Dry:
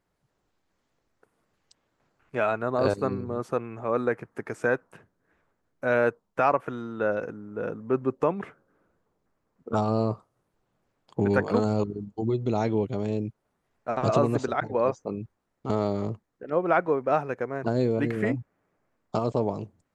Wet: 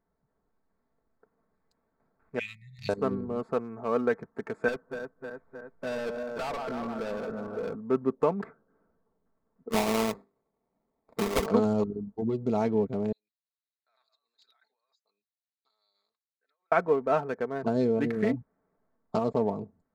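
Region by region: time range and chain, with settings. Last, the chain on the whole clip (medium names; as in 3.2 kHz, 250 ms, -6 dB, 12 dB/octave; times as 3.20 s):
2.39–2.89 s: brick-wall FIR band-stop 190–1800 Hz + tilt shelf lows -4.5 dB, about 710 Hz
4.68–7.75 s: backward echo that repeats 155 ms, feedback 72%, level -10 dB + overload inside the chain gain 29 dB + three bands compressed up and down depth 40%
9.69–11.46 s: high-pass 190 Hz + hum notches 50/100/150/200/250/300/350/400 Hz + sample-rate reducer 1.6 kHz, jitter 20%
13.12–16.72 s: compressor with a negative ratio -33 dBFS + ladder band-pass 4.2 kHz, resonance 75%
whole clip: local Wiener filter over 15 samples; comb 4.5 ms, depth 48%; trim -2 dB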